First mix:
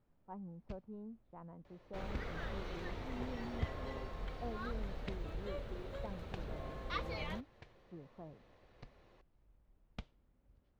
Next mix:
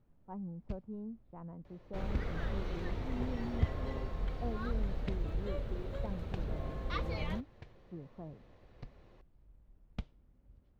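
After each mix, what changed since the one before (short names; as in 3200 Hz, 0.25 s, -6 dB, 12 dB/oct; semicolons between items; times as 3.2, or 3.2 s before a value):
master: add low shelf 360 Hz +8 dB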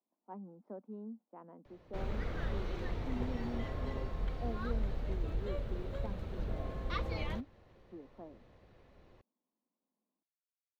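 speech: add steep high-pass 210 Hz 48 dB/oct; first sound: muted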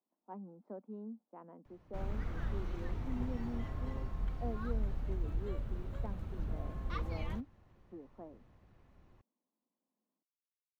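background: add ten-band EQ 500 Hz -10 dB, 2000 Hz -4 dB, 4000 Hz -8 dB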